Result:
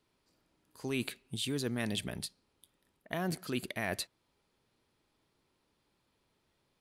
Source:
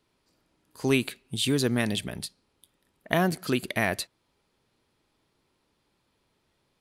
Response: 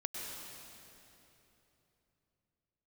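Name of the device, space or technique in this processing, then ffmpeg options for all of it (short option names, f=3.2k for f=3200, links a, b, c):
compression on the reversed sound: -af "areverse,acompressor=threshold=-27dB:ratio=6,areverse,volume=-4dB"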